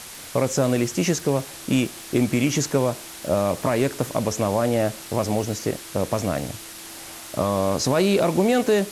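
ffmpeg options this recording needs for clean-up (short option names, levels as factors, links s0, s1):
-af "adeclick=t=4,bandreject=f=330:w=30,afwtdn=0.014"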